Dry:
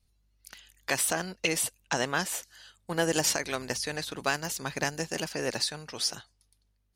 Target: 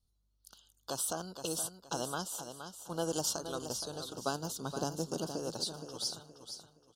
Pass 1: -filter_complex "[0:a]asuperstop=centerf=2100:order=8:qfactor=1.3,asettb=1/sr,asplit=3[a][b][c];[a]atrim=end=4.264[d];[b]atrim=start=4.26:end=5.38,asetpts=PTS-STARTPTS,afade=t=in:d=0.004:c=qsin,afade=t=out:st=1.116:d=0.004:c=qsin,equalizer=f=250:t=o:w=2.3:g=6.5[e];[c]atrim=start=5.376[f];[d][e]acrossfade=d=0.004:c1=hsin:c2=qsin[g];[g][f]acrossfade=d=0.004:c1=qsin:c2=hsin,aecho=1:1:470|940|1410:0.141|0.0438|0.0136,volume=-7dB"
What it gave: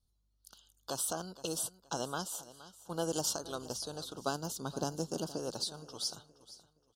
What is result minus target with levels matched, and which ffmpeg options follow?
echo-to-direct -8 dB
-filter_complex "[0:a]asuperstop=centerf=2100:order=8:qfactor=1.3,asettb=1/sr,asplit=3[a][b][c];[a]atrim=end=4.264[d];[b]atrim=start=4.26:end=5.38,asetpts=PTS-STARTPTS,afade=t=in:d=0.004:c=qsin,afade=t=out:st=1.116:d=0.004:c=qsin,equalizer=f=250:t=o:w=2.3:g=6.5[e];[c]atrim=start=5.376[f];[d][e]acrossfade=d=0.004:c1=hsin:c2=qsin[g];[g][f]acrossfade=d=0.004:c1=qsin:c2=hsin,aecho=1:1:470|940|1410|1880:0.355|0.11|0.0341|0.0106,volume=-7dB"

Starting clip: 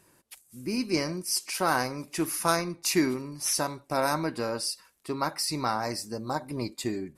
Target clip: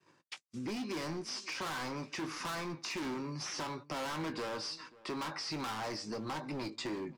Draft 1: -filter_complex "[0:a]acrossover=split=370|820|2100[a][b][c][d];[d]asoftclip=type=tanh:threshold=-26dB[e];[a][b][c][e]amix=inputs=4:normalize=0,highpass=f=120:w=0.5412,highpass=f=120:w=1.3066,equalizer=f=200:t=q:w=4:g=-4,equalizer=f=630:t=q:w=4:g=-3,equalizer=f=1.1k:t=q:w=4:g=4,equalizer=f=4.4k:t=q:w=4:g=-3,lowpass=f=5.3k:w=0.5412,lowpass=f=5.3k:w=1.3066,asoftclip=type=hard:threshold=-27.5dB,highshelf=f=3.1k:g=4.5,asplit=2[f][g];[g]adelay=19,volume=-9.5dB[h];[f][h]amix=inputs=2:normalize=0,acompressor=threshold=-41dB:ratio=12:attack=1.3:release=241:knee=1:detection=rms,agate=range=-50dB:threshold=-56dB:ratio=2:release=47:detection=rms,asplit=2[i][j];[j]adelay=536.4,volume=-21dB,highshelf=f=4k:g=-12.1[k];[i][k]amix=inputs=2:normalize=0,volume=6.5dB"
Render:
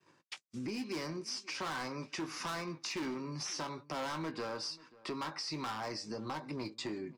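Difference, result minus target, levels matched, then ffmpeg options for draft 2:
soft clip: distortion -8 dB; hard clip: distortion -4 dB
-filter_complex "[0:a]acrossover=split=370|820|2100[a][b][c][d];[d]asoftclip=type=tanh:threshold=-36.5dB[e];[a][b][c][e]amix=inputs=4:normalize=0,highpass=f=120:w=0.5412,highpass=f=120:w=1.3066,equalizer=f=200:t=q:w=4:g=-4,equalizer=f=630:t=q:w=4:g=-3,equalizer=f=1.1k:t=q:w=4:g=4,equalizer=f=4.4k:t=q:w=4:g=-3,lowpass=f=5.3k:w=0.5412,lowpass=f=5.3k:w=1.3066,asoftclip=type=hard:threshold=-34dB,highshelf=f=3.1k:g=4.5,asplit=2[f][g];[g]adelay=19,volume=-9.5dB[h];[f][h]amix=inputs=2:normalize=0,acompressor=threshold=-41dB:ratio=12:attack=1.3:release=241:knee=1:detection=rms,agate=range=-50dB:threshold=-56dB:ratio=2:release=47:detection=rms,asplit=2[i][j];[j]adelay=536.4,volume=-21dB,highshelf=f=4k:g=-12.1[k];[i][k]amix=inputs=2:normalize=0,volume=6.5dB"

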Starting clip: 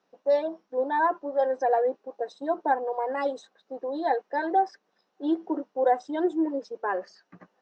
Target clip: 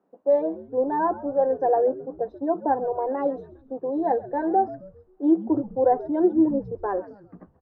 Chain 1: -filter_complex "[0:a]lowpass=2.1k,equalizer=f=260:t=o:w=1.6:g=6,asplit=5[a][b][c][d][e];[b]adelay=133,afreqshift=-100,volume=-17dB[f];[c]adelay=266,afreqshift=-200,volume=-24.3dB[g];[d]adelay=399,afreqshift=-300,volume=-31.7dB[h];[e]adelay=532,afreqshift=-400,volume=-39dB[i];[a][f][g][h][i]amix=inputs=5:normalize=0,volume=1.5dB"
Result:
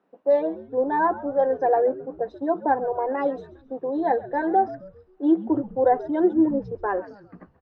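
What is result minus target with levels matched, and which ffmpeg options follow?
2000 Hz band +7.5 dB
-filter_complex "[0:a]lowpass=990,equalizer=f=260:t=o:w=1.6:g=6,asplit=5[a][b][c][d][e];[b]adelay=133,afreqshift=-100,volume=-17dB[f];[c]adelay=266,afreqshift=-200,volume=-24.3dB[g];[d]adelay=399,afreqshift=-300,volume=-31.7dB[h];[e]adelay=532,afreqshift=-400,volume=-39dB[i];[a][f][g][h][i]amix=inputs=5:normalize=0,volume=1.5dB"

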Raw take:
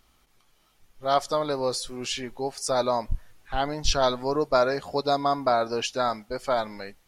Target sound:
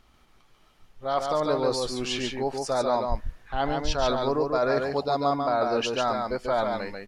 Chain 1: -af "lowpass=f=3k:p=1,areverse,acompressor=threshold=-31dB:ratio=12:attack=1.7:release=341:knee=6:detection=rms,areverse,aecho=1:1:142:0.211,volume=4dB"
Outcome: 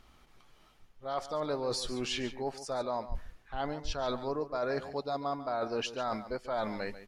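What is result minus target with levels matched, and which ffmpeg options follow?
compressor: peak gain reduction +8.5 dB; echo-to-direct -9.5 dB
-af "lowpass=f=3k:p=1,areverse,acompressor=threshold=-21.5dB:ratio=12:attack=1.7:release=341:knee=6:detection=rms,areverse,aecho=1:1:142:0.631,volume=4dB"

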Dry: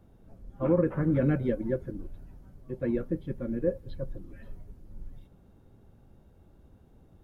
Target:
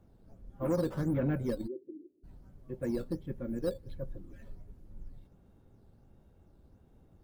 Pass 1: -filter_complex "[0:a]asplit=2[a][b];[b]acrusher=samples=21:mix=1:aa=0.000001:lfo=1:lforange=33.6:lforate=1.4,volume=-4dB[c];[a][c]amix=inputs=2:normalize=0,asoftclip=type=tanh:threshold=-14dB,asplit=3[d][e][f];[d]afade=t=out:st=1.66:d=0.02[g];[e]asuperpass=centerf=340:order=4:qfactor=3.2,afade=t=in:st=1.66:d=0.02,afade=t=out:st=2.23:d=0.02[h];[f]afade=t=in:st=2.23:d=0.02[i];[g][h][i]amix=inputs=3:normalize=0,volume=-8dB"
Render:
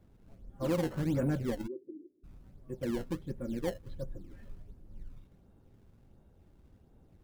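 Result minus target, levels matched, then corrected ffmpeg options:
decimation with a swept rate: distortion +12 dB
-filter_complex "[0:a]asplit=2[a][b];[b]acrusher=samples=6:mix=1:aa=0.000001:lfo=1:lforange=9.6:lforate=1.4,volume=-4dB[c];[a][c]amix=inputs=2:normalize=0,asoftclip=type=tanh:threshold=-14dB,asplit=3[d][e][f];[d]afade=t=out:st=1.66:d=0.02[g];[e]asuperpass=centerf=340:order=4:qfactor=3.2,afade=t=in:st=1.66:d=0.02,afade=t=out:st=2.23:d=0.02[h];[f]afade=t=in:st=2.23:d=0.02[i];[g][h][i]amix=inputs=3:normalize=0,volume=-8dB"

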